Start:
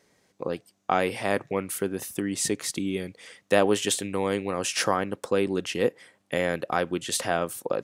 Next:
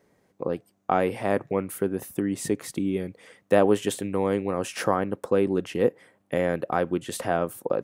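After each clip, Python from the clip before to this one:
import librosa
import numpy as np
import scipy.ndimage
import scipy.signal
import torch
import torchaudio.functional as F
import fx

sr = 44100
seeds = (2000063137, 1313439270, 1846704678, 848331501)

y = fx.peak_eq(x, sr, hz=5200.0, db=-13.0, octaves=2.8)
y = F.gain(torch.from_numpy(y), 3.0).numpy()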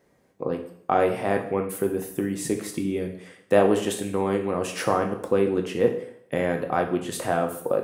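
y = fx.rev_plate(x, sr, seeds[0], rt60_s=0.64, hf_ratio=0.95, predelay_ms=0, drr_db=3.5)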